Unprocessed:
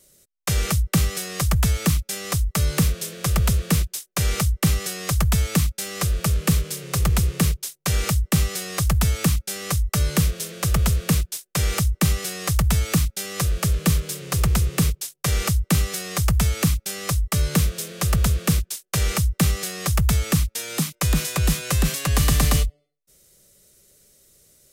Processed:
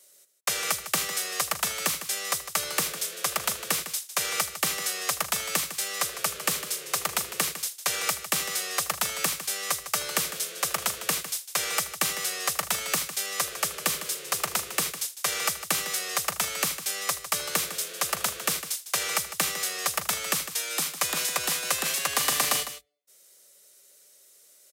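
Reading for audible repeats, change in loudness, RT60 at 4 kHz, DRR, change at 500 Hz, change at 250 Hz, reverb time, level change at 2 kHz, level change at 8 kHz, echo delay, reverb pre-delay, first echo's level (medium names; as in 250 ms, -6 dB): 2, -4.5 dB, no reverb, no reverb, -4.5 dB, -18.0 dB, no reverb, +0.5 dB, +0.5 dB, 78 ms, no reverb, -17.0 dB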